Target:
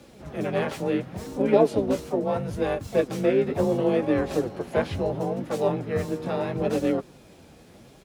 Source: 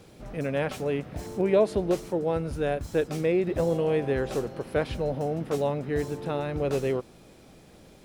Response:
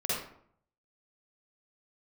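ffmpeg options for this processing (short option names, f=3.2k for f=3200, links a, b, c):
-filter_complex "[0:a]asplit=3[a][b][c];[b]asetrate=29433,aresample=44100,atempo=1.49831,volume=-4dB[d];[c]asetrate=58866,aresample=44100,atempo=0.749154,volume=-10dB[e];[a][d][e]amix=inputs=3:normalize=0,afreqshift=28,flanger=delay=3.4:depth=9.3:regen=46:speed=0.73:shape=sinusoidal,volume=4dB"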